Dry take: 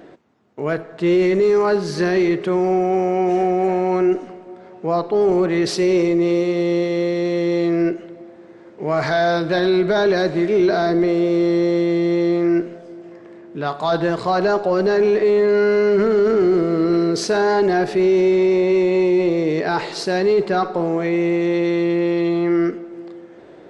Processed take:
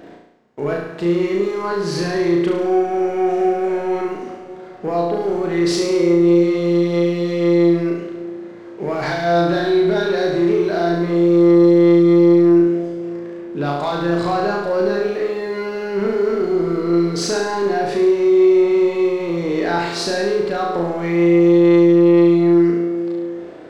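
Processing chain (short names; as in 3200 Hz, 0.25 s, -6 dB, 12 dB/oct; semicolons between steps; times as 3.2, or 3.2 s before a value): compressor, threshold -20 dBFS, peak gain reduction 7 dB; sample leveller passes 1; flutter echo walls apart 6 m, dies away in 0.83 s; gain -2 dB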